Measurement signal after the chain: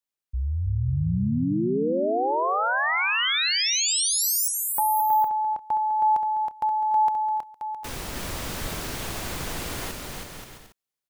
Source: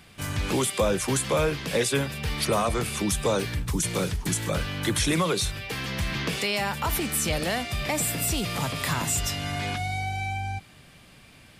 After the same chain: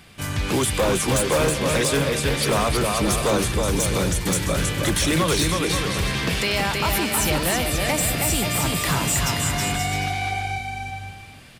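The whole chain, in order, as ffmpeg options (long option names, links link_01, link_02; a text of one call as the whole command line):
ffmpeg -i in.wav -filter_complex "[0:a]asplit=2[link_01][link_02];[link_02]aecho=0:1:320|528|663.2|751.1|808.2:0.631|0.398|0.251|0.158|0.1[link_03];[link_01][link_03]amix=inputs=2:normalize=0,aeval=exprs='0.141*(abs(mod(val(0)/0.141+3,4)-2)-1)':channel_layout=same,volume=3.5dB" out.wav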